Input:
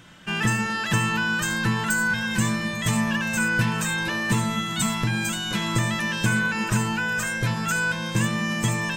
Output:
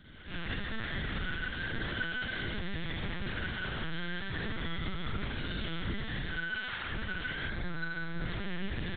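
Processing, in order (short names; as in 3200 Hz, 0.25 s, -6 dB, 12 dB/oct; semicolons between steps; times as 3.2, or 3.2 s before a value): minimum comb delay 0.56 ms; 6.25–6.85 HPF 690 Hz 24 dB/oct; in parallel at +2 dB: limiter -19 dBFS, peak gain reduction 8.5 dB; on the sum: wavefolder -16.5 dBFS; flange 1.3 Hz, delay 0.5 ms, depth 7.7 ms, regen -32%; hard clip -33 dBFS, distortion -6 dB; rotary speaker horn 5.5 Hz; tube stage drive 28 dB, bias 0.7; on a send: echo 0.152 s -8 dB; on the sum: Schroeder reverb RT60 1.5 s, combs from 33 ms, DRR -7.5 dB; 7.49–8.27 careless resampling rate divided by 8×, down filtered, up hold; LPC vocoder at 8 kHz pitch kept; gain -4 dB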